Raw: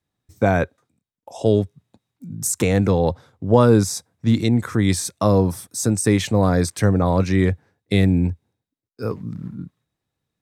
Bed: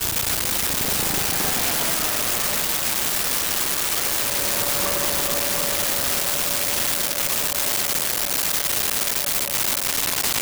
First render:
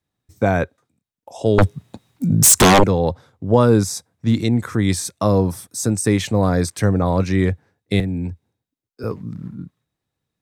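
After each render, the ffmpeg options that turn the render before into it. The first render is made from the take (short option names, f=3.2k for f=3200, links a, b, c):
-filter_complex "[0:a]asettb=1/sr,asplit=3[a][b][c];[a]atrim=end=1.584[d];[b]atrim=start=1.58:end=2.84,asetpts=PTS-STARTPTS,afade=t=in:d=0.004:c=qsin,afade=t=out:st=1.256:d=0.004:c=qsin,aeval=exprs='0.473*sin(PI/2*4.47*val(0)/0.473)':c=same[e];[c]atrim=start=2.836[f];[d][e]acrossfade=d=0.004:c1=hsin:c2=qsin[g];[g][f]acrossfade=d=0.004:c1=qsin:c2=hsin,asettb=1/sr,asplit=3[h][i][j];[h]atrim=end=8.004[k];[i]atrim=start=8:end=9.04,asetpts=PTS-STARTPTS,afade=t=in:d=0.004:c=qsin,afade=t=out:st=1.036:d=0.004:c=qsin,acrossover=split=110|310|2300[l][m][n][o];[l]acompressor=threshold=-32dB:ratio=3[p];[m]acompressor=threshold=-27dB:ratio=3[q];[n]acompressor=threshold=-35dB:ratio=3[r];[o]acompressor=threshold=-50dB:ratio=3[s];[p][q][r][s]amix=inputs=4:normalize=0[t];[j]atrim=start=9.036[u];[k][t]acrossfade=d=0.004:c1=hsin:c2=qsin[v];[v][u]acrossfade=d=0.004:c1=qsin:c2=hsin"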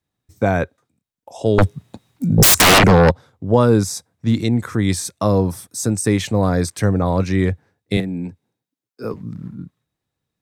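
-filter_complex "[0:a]asplit=3[a][b][c];[a]afade=t=out:st=2.37:d=0.02[d];[b]aeval=exprs='0.501*sin(PI/2*2.51*val(0)/0.501)':c=same,afade=t=in:st=2.37:d=0.02,afade=t=out:st=3.1:d=0.02[e];[c]afade=t=in:st=3.1:d=0.02[f];[d][e][f]amix=inputs=3:normalize=0,asettb=1/sr,asplit=3[g][h][i];[g]atrim=end=7.974[j];[h]atrim=start=7.97:end=9.14,asetpts=PTS-STARTPTS,afade=t=in:d=0.004:c=qsin,afade=t=out:st=1.166:d=0.004:c=qsin,highpass=f=130:w=0.5412,highpass=f=130:w=1.3066[k];[i]atrim=start=9.136[l];[j][k]acrossfade=d=0.004:c1=hsin:c2=qsin[m];[m][l]acrossfade=d=0.004:c1=qsin:c2=hsin"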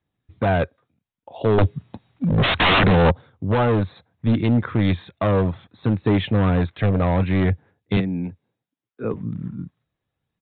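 -af "aresample=8000,asoftclip=type=hard:threshold=-14.5dB,aresample=44100,aphaser=in_gain=1:out_gain=1:delay=1.9:decay=0.23:speed=0.65:type=triangular"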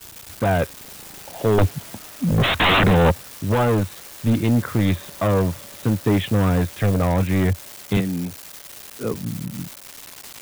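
-filter_complex "[1:a]volume=-17.5dB[a];[0:a][a]amix=inputs=2:normalize=0"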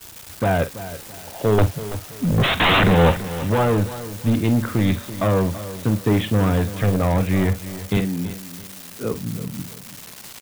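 -filter_complex "[0:a]asplit=2[a][b];[b]adelay=47,volume=-13dB[c];[a][c]amix=inputs=2:normalize=0,aecho=1:1:332|664|996:0.2|0.0678|0.0231"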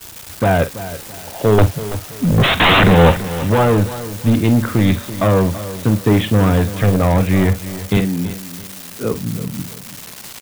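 -af "volume=5dB,alimiter=limit=-3dB:level=0:latency=1"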